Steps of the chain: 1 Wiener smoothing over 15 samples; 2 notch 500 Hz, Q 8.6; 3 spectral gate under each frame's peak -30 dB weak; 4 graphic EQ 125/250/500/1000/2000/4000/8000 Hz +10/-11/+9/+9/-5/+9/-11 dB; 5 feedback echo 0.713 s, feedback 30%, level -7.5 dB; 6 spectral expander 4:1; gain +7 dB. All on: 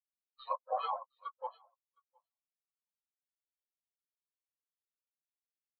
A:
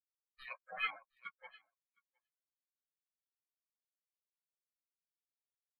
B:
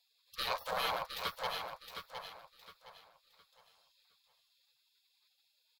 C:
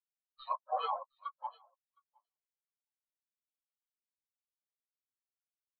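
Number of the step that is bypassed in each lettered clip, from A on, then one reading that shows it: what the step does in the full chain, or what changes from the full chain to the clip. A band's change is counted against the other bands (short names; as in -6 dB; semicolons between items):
4, 2 kHz band +29.5 dB; 6, 2 kHz band +18.5 dB; 2, 500 Hz band -3.0 dB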